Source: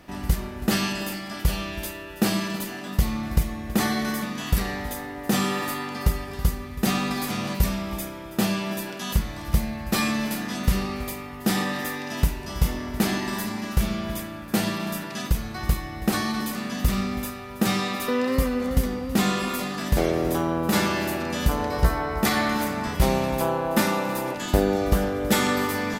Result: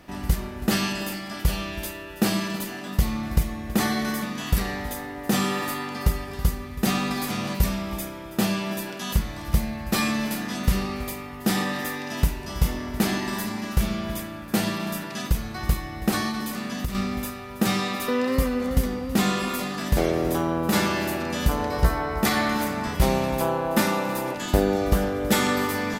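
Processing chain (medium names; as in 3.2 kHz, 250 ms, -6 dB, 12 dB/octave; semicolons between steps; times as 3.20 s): 16.28–16.95 s: compression 6:1, threshold -25 dBFS, peak gain reduction 9.5 dB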